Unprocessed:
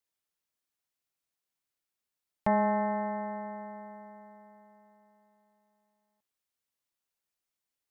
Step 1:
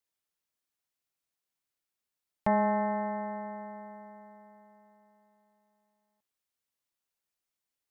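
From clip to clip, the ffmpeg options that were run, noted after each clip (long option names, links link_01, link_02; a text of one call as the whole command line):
ffmpeg -i in.wav -af anull out.wav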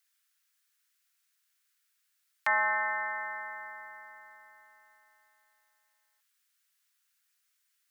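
ffmpeg -i in.wav -af "highpass=frequency=1500:width_type=q:width=2.5,highshelf=frequency=2200:gain=10,volume=2.5dB" out.wav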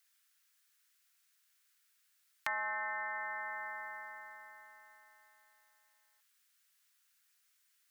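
ffmpeg -i in.wav -af "acompressor=threshold=-40dB:ratio=3,volume=2dB" out.wav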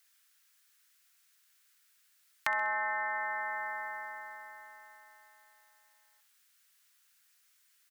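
ffmpeg -i in.wav -af "aecho=1:1:65|130|195|260:0.141|0.0678|0.0325|0.0156,volume=5dB" out.wav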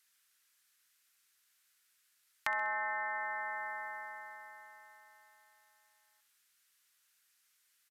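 ffmpeg -i in.wav -af "aresample=32000,aresample=44100,volume=-3dB" out.wav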